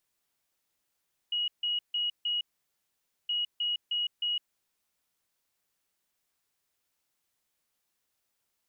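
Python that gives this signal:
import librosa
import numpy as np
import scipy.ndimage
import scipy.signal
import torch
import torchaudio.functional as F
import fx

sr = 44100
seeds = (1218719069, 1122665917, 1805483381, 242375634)

y = fx.beep_pattern(sr, wave='sine', hz=2900.0, on_s=0.16, off_s=0.15, beeps=4, pause_s=0.88, groups=2, level_db=-27.0)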